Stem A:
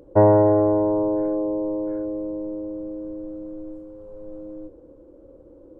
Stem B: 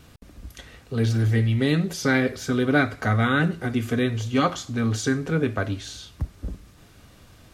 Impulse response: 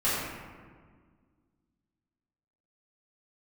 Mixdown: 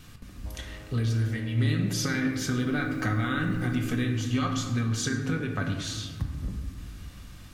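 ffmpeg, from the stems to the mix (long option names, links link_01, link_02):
-filter_complex "[0:a]acompressor=threshold=-19dB:ratio=6,acrusher=bits=8:mix=0:aa=0.000001,adelay=300,volume=-4.5dB,afade=type=in:start_time=1.02:duration=0.6:silence=0.375837,afade=type=in:start_time=2.47:duration=0.23:silence=0.298538,afade=type=out:start_time=3.82:duration=0.42:silence=0.398107,asplit=2[link_01][link_02];[link_02]volume=-15dB[link_03];[1:a]acompressor=threshold=-26dB:ratio=6,volume=1dB,asplit=3[link_04][link_05][link_06];[link_05]volume=-14.5dB[link_07];[link_06]apad=whole_len=268945[link_08];[link_01][link_08]sidechaincompress=threshold=-32dB:ratio=8:attack=16:release=433[link_09];[2:a]atrim=start_sample=2205[link_10];[link_03][link_07]amix=inputs=2:normalize=0[link_11];[link_11][link_10]afir=irnorm=-1:irlink=0[link_12];[link_09][link_04][link_12]amix=inputs=3:normalize=0,equalizer=frequency=550:width=0.92:gain=-9"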